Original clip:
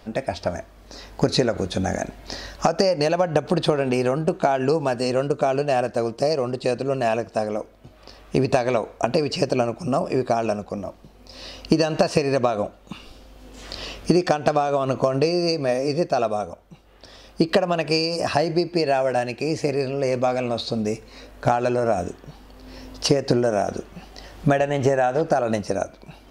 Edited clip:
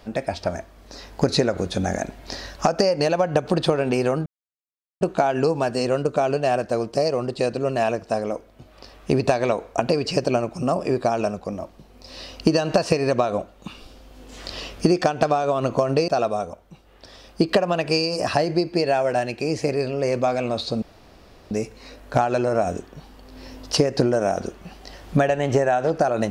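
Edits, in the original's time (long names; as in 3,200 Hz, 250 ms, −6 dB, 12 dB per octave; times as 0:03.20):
0:04.26: splice in silence 0.75 s
0:15.33–0:16.08: remove
0:20.82: splice in room tone 0.69 s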